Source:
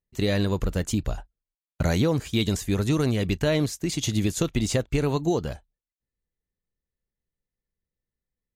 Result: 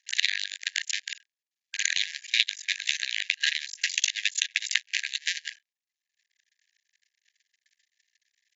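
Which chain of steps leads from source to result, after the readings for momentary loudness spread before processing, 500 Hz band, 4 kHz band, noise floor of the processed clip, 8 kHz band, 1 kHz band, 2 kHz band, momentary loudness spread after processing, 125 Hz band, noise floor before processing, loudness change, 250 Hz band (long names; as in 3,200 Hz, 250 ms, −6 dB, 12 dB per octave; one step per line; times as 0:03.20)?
5 LU, below −40 dB, +7.5 dB, below −85 dBFS, +3.5 dB, below −25 dB, +8.0 dB, 7 LU, below −40 dB, below −85 dBFS, −2.0 dB, below −40 dB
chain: sub-harmonics by changed cycles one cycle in 2, muted
backwards echo 61 ms −15 dB
transient designer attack +12 dB, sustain −8 dB
linear-phase brick-wall band-pass 1,600–7,400 Hz
multiband upward and downward compressor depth 70%
level +4 dB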